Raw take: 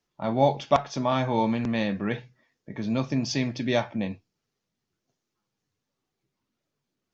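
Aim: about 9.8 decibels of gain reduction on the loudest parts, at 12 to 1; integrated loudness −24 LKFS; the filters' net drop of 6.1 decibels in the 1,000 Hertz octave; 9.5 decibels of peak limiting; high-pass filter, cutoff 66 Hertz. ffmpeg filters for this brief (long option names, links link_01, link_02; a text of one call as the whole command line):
ffmpeg -i in.wav -af "highpass=66,equalizer=frequency=1000:width_type=o:gain=-8.5,acompressor=threshold=-27dB:ratio=12,volume=12dB,alimiter=limit=-13.5dB:level=0:latency=1" out.wav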